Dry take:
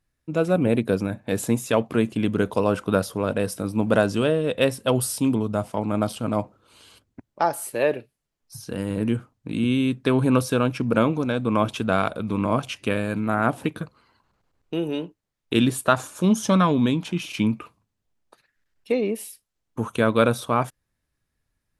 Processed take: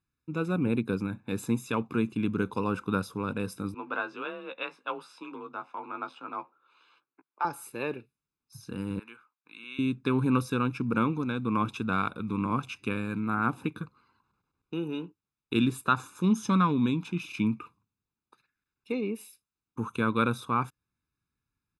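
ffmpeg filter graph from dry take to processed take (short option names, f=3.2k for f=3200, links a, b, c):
-filter_complex "[0:a]asettb=1/sr,asplit=3[a][b][c];[a]atrim=end=3.744[d];[b]atrim=start=3.74:end=7.45,asetpts=PTS-STARTPTS,afade=t=in:d=0.004:c=qsin,afade=t=out:st=3.706:d=0.004:c=qsin,highpass=580,lowpass=2.7k,afreqshift=33,asplit=2[e][f];[f]adelay=15,volume=-7dB[g];[e][g]amix=inputs=2:normalize=0,atrim=end_sample=163611[h];[c]atrim=start=7.446[i];[d][h]acrossfade=d=0.004:c1=hsin:c2=qsin[j];[j][i]acrossfade=d=0.004:c1=qsin:c2=hsin,asettb=1/sr,asplit=3[k][l][m];[k]atrim=end=8.994[n];[l]atrim=start=8.99:end=9.79,asetpts=PTS-STARTPTS,afade=t=in:d=0.004:c=qsin,afade=t=out:st=0.796:d=0.004:c=qsin,highpass=1.2k,equalizer=f=7.8k:w=0.76:g=-10[o];[m]atrim=start=9.786[p];[n][o]acrossfade=d=0.004:c1=hsin:c2=qsin[q];[q][p]acrossfade=d=0.004:c1=qsin:c2=hsin,highpass=f=130:p=1,highshelf=f=4.5k:g=-8,aecho=1:1:0.8:0.82,volume=-7.5dB"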